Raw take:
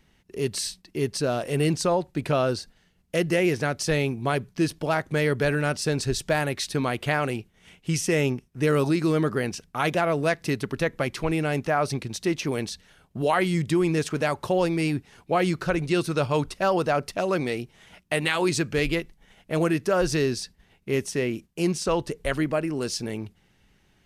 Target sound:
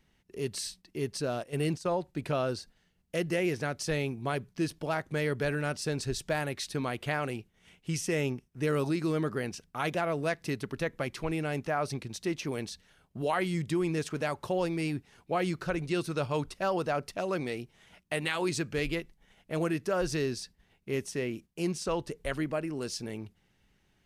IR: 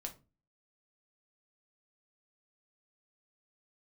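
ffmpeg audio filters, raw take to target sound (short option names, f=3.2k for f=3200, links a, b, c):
-filter_complex "[0:a]asettb=1/sr,asplit=3[a][b][c];[a]atrim=end=1.434[d];[b]atrim=start=1.43:end=1.98,asetpts=PTS-STARTPTS,afade=t=in:d=0.004:c=qsin,afade=t=out:st=0.546:d=0.004:c=qsin,agate=range=-12dB:threshold=-26dB:ratio=16:detection=peak[e];[c]atrim=start=1.976[f];[d][e]acrossfade=d=0.004:c1=hsin:c2=qsin[g];[g][f]acrossfade=d=0.004:c1=qsin:c2=hsin,volume=-7dB"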